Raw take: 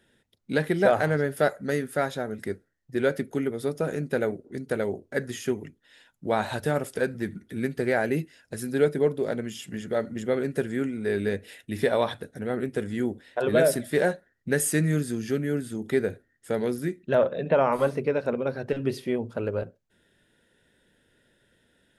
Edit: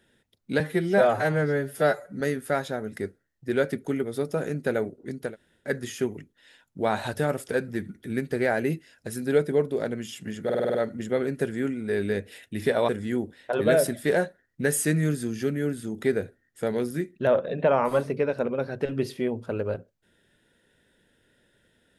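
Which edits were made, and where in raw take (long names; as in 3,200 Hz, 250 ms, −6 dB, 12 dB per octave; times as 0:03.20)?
0:00.60–0:01.67: time-stretch 1.5×
0:04.75–0:05.09: fill with room tone, crossfade 0.16 s
0:09.91: stutter 0.05 s, 7 plays
0:12.05–0:12.76: remove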